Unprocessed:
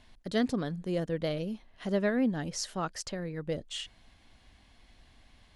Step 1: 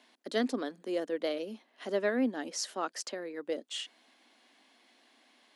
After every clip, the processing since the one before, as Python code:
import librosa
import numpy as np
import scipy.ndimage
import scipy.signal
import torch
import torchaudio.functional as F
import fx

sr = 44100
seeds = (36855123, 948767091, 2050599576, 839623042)

y = scipy.signal.sosfilt(scipy.signal.butter(8, 240.0, 'highpass', fs=sr, output='sos'), x)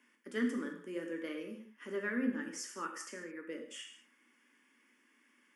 y = fx.fixed_phaser(x, sr, hz=1700.0, stages=4)
y = fx.rev_gated(y, sr, seeds[0], gate_ms=240, shape='falling', drr_db=1.5)
y = y * 10.0 ** (-3.5 / 20.0)